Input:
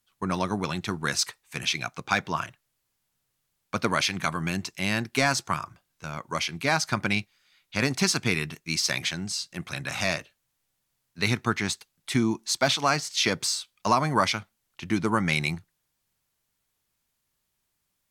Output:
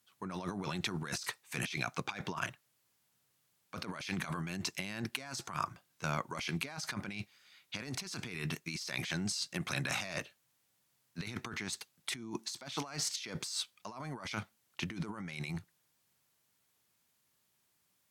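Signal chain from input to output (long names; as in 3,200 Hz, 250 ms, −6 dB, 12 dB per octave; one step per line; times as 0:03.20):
high-pass filter 110 Hz 12 dB per octave
compressor whose output falls as the input rises −35 dBFS, ratio −1
level −5 dB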